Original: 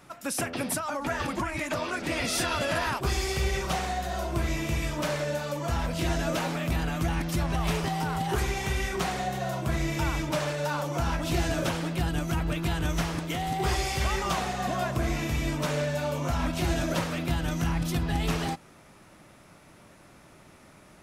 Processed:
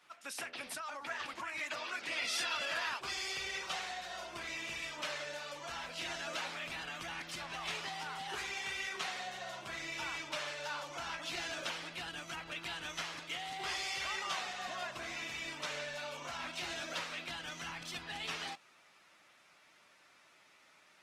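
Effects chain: LPF 3200 Hz 12 dB/oct; differentiator; gain +6.5 dB; Opus 20 kbps 48000 Hz

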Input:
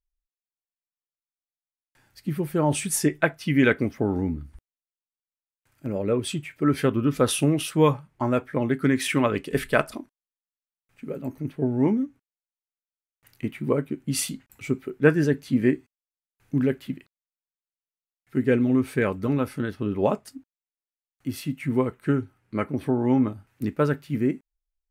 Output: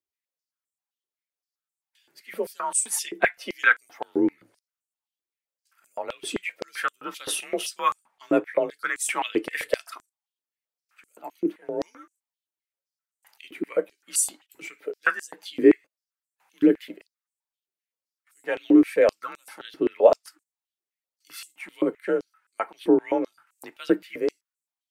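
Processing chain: bin magnitudes rounded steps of 15 dB; frequency shift +40 Hz; stepped high-pass 7.7 Hz 340–7800 Hz; gain -1 dB

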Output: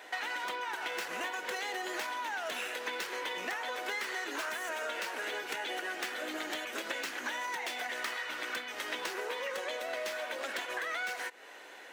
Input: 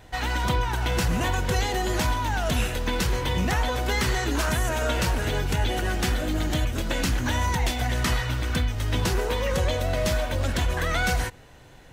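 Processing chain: tracing distortion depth 0.052 ms; HPF 350 Hz 24 dB/oct; bell 1900 Hz +7 dB 1.4 oct; compressor 6:1, threshold -35 dBFS, peak gain reduction 15.5 dB

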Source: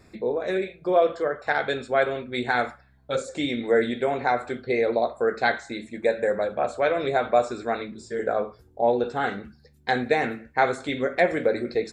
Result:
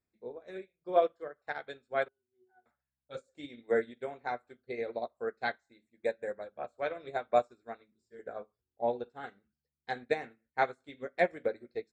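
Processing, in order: 2.08–2.66 octave resonator F#, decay 0.28 s; upward expander 2.5:1, over -36 dBFS; gain -4 dB

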